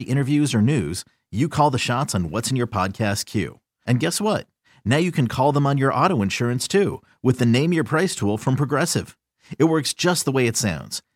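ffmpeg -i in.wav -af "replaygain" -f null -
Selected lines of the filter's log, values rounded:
track_gain = +2.5 dB
track_peak = 0.430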